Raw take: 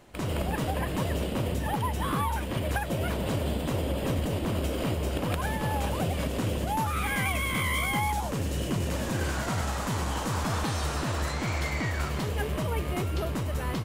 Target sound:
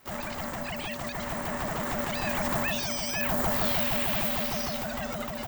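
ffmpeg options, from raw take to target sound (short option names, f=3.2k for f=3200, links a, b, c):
-af "aexciter=amount=13.1:drive=6.5:freq=6.7k,alimiter=limit=-12dB:level=0:latency=1:release=24,asetrate=111573,aresample=44100,aeval=exprs='val(0)*sin(2*PI*410*n/s)':c=same,dynaudnorm=f=580:g=9:m=11.5dB,volume=-3dB"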